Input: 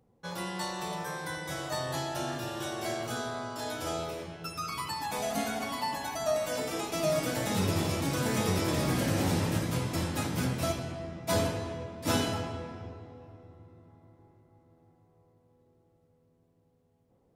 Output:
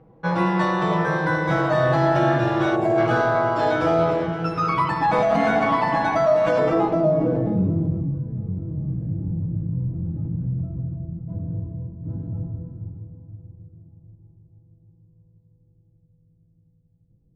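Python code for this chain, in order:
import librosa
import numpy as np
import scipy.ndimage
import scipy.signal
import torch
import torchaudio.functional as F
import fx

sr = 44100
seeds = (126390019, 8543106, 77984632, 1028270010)

p1 = x + 0.59 * np.pad(x, (int(6.2 * sr / 1000.0), 0))[:len(x)]
p2 = fx.over_compress(p1, sr, threshold_db=-32.0, ratio=-0.5)
p3 = p1 + (p2 * librosa.db_to_amplitude(0.0))
p4 = fx.echo_feedback(p3, sr, ms=520, feedback_pct=36, wet_db=-15.0)
p5 = fx.filter_sweep_lowpass(p4, sr, from_hz=1800.0, to_hz=110.0, start_s=6.51, end_s=8.24, q=0.79)
p6 = fx.spec_box(p5, sr, start_s=2.76, length_s=0.22, low_hz=1100.0, high_hz=6500.0, gain_db=-10)
y = p6 * librosa.db_to_amplitude(7.0)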